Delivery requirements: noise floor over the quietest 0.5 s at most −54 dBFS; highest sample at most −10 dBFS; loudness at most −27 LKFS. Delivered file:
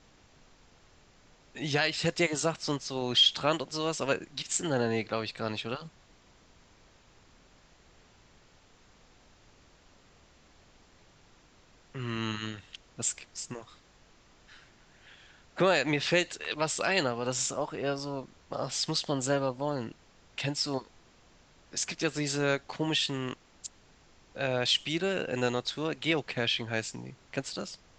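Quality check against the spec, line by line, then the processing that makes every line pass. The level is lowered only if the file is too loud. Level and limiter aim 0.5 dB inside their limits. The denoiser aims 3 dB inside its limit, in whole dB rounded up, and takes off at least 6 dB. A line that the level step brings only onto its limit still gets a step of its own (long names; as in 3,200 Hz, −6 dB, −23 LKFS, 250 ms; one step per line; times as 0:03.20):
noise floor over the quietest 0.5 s −60 dBFS: in spec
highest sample −12.0 dBFS: in spec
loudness −30.5 LKFS: in spec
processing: no processing needed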